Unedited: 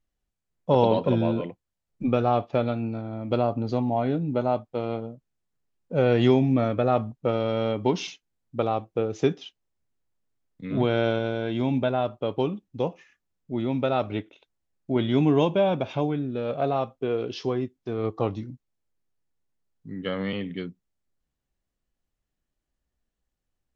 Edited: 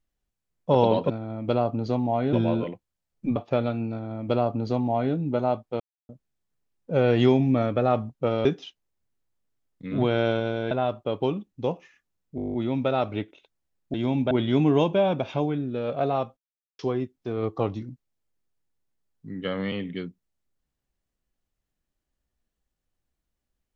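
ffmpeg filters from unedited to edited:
-filter_complex "[0:a]asplit=21[s0][s1][s2][s3][s4][s5][s6][s7][s8][s9][s10][s11][s12][s13][s14][s15][s16][s17][s18][s19][s20];[s0]atrim=end=1.102[s21];[s1]atrim=start=2.928:end=4.162[s22];[s2]atrim=start=1.098:end=2.132[s23];[s3]atrim=start=2.378:end=4.82,asetpts=PTS-STARTPTS,afade=t=out:st=2.438:d=0.004:c=hsin[s24];[s4]atrim=start=4.82:end=5.11,asetpts=PTS-STARTPTS,volume=0[s25];[s5]atrim=start=5.11:end=7.472,asetpts=PTS-STARTPTS,afade=t=in:d=0.004:c=hsin[s26];[s6]atrim=start=9.238:end=11.502[s27];[s7]atrim=start=11.868:end=13.542[s28];[s8]atrim=start=13.518:end=13.542[s29];[s9]atrim=start=13.518:end=13.542[s30];[s10]atrim=start=13.518:end=13.542[s31];[s11]atrim=start=13.518:end=13.542[s32];[s12]atrim=start=13.518:end=13.542[s33];[s13]atrim=start=13.518:end=13.542[s34];[s14]atrim=start=13.518:end=13.542[s35];[s15]atrim=start=13.518:end=13.542[s36];[s16]atrim=start=13.518:end=14.922[s37];[s17]atrim=start=11.498:end=11.872[s38];[s18]atrim=start=14.918:end=16.98,asetpts=PTS-STARTPTS,afade=t=out:st=2.058:d=0.004:c=hsin[s39];[s19]atrim=start=16.98:end=17.4,asetpts=PTS-STARTPTS,volume=0[s40];[s20]atrim=start=17.4,asetpts=PTS-STARTPTS,afade=t=in:d=0.004:c=hsin[s41];[s21][s22]acrossfade=d=0.004:c1=hsin:c2=hsin[s42];[s42][s23]acrossfade=d=0.004:c1=hsin:c2=hsin[s43];[s24][s25][s26]concat=n=3:v=0:a=1[s44];[s43][s44]acrossfade=d=0.004:c1=hsin:c2=hsin[s45];[s45][s27]acrossfade=d=0.004:c1=hsin:c2=hsin[s46];[s46][s28]acrossfade=d=0.004:c1=hsin:c2=hsin[s47];[s47][s29]acrossfade=d=0.004:c1=hsin:c2=hsin[s48];[s48][s30]acrossfade=d=0.004:c1=hsin:c2=hsin[s49];[s49][s31]acrossfade=d=0.004:c1=hsin:c2=hsin[s50];[s50][s32]acrossfade=d=0.004:c1=hsin:c2=hsin[s51];[s51][s33]acrossfade=d=0.004:c1=hsin:c2=hsin[s52];[s52][s34]acrossfade=d=0.004:c1=hsin:c2=hsin[s53];[s53][s35]acrossfade=d=0.004:c1=hsin:c2=hsin[s54];[s54][s36]acrossfade=d=0.004:c1=hsin:c2=hsin[s55];[s55][s37]acrossfade=d=0.004:c1=hsin:c2=hsin[s56];[s56][s38]acrossfade=d=0.004:c1=hsin:c2=hsin[s57];[s39][s40][s41]concat=n=3:v=0:a=1[s58];[s57][s58]acrossfade=d=0.004:c1=hsin:c2=hsin"

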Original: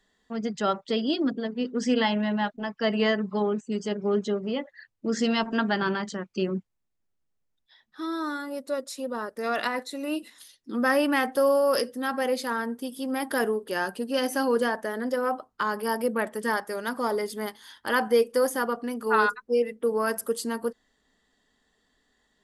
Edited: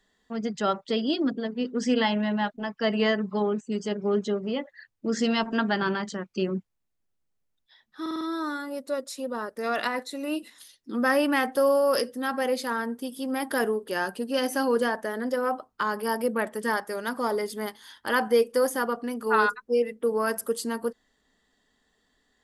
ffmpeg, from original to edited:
-filter_complex "[0:a]asplit=5[s0][s1][s2][s3][s4];[s0]atrim=end=8.062[s5];[s1]atrim=start=8.008:end=8.062[s6];[s2]atrim=start=8.008:end=8.062[s7];[s3]atrim=start=8.008:end=8.062[s8];[s4]atrim=start=8.008[s9];[s5][s6]acrossfade=d=0.004:c1=hsin:c2=hsin[s10];[s10][s7]acrossfade=d=0.004:c1=hsin:c2=hsin[s11];[s11][s8]acrossfade=d=0.004:c1=hsin:c2=hsin[s12];[s12][s9]acrossfade=d=0.004:c1=hsin:c2=hsin"

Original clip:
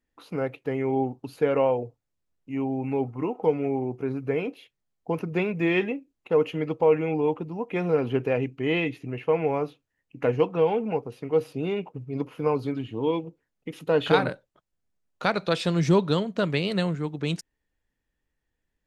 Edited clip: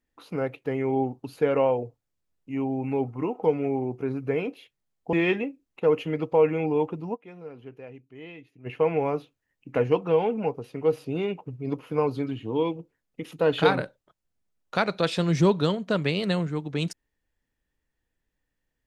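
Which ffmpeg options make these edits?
-filter_complex "[0:a]asplit=4[s0][s1][s2][s3];[s0]atrim=end=5.132[s4];[s1]atrim=start=5.608:end=7.77,asetpts=PTS-STARTPTS,afade=t=out:st=2.012:d=0.15:c=exp:silence=0.125893[s5];[s2]atrim=start=7.77:end=9,asetpts=PTS-STARTPTS,volume=0.126[s6];[s3]atrim=start=9,asetpts=PTS-STARTPTS,afade=t=in:d=0.15:c=exp:silence=0.125893[s7];[s5][s6][s7]concat=n=3:v=0:a=1[s8];[s4][s8]acrossfade=d=0.004:c1=hsin:c2=hsin"

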